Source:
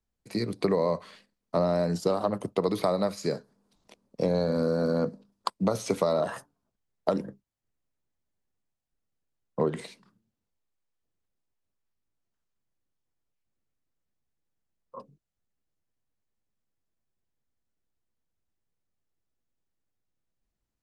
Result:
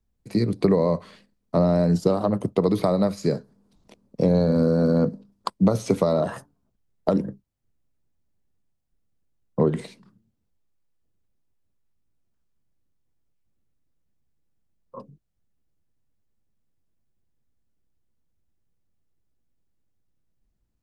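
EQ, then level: bass shelf 380 Hz +11.5 dB; 0.0 dB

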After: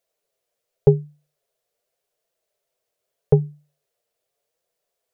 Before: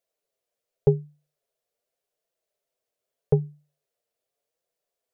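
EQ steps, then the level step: peaking EQ 260 Hz -7 dB 0.26 oct; +5.5 dB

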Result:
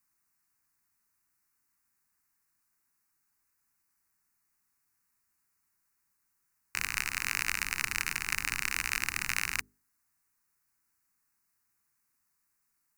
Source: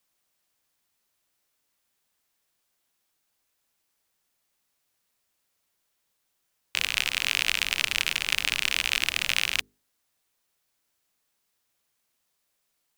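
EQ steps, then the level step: static phaser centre 1.4 kHz, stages 4; 0.0 dB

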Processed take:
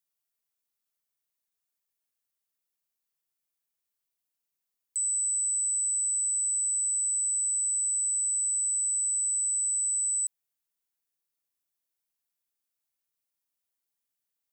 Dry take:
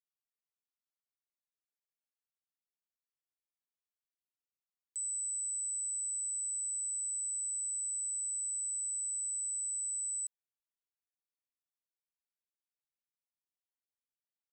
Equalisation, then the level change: treble shelf 7.5 kHz +10 dB; +3.5 dB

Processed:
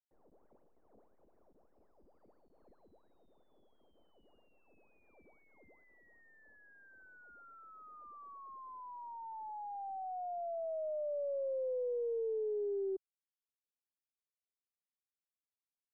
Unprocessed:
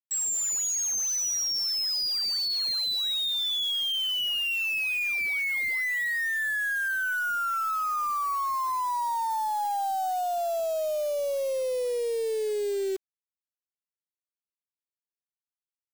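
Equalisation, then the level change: four-pole ladder low-pass 760 Hz, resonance 20%; distance through air 220 m; peaking EQ 120 Hz -13 dB 1.1 oct; -2.5 dB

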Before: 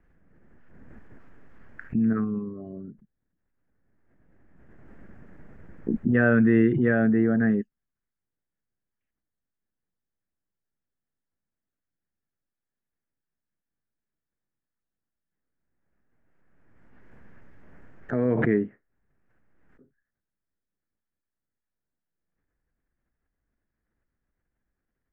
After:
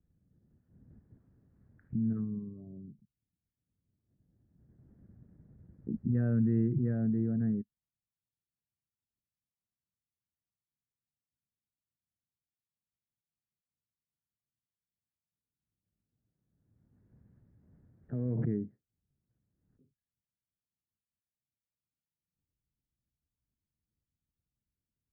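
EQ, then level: band-pass filter 110 Hz, Q 1.3; -2.0 dB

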